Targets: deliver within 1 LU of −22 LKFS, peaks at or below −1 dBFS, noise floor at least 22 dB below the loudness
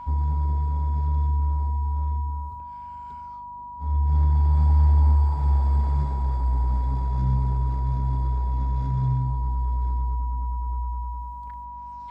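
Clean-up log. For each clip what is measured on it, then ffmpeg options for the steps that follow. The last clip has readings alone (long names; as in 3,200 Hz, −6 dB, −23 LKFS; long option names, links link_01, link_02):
mains hum 50 Hz; hum harmonics up to 250 Hz; level of the hum −52 dBFS; interfering tone 970 Hz; level of the tone −35 dBFS; integrated loudness −24.5 LKFS; sample peak −11.5 dBFS; target loudness −22.0 LKFS
→ -af "bandreject=frequency=50:width_type=h:width=4,bandreject=frequency=100:width_type=h:width=4,bandreject=frequency=150:width_type=h:width=4,bandreject=frequency=200:width_type=h:width=4,bandreject=frequency=250:width_type=h:width=4"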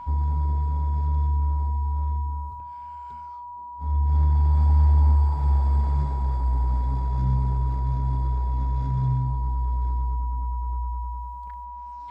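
mains hum none found; interfering tone 970 Hz; level of the tone −35 dBFS
→ -af "bandreject=frequency=970:width=30"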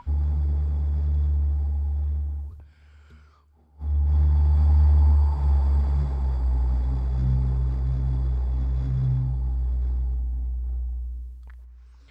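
interfering tone none found; integrated loudness −24.5 LKFS; sample peak −11.5 dBFS; target loudness −22.0 LKFS
→ -af "volume=2.5dB"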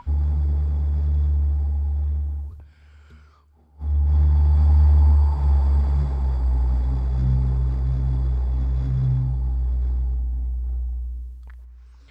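integrated loudness −22.0 LKFS; sample peak −9.0 dBFS; background noise floor −51 dBFS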